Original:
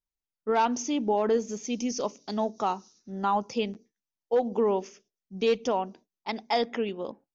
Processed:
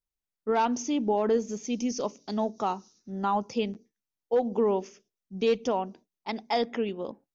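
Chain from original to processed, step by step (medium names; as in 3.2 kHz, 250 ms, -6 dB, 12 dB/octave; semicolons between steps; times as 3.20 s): bass shelf 410 Hz +4 dB; trim -2 dB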